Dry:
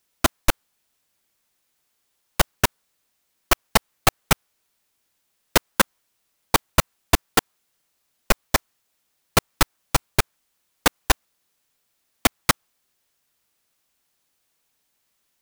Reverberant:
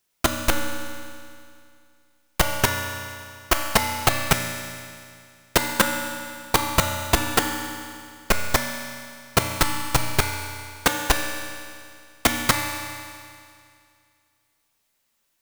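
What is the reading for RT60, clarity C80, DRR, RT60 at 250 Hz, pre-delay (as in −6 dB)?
2.3 s, 5.0 dB, 2.0 dB, 2.3 s, 3 ms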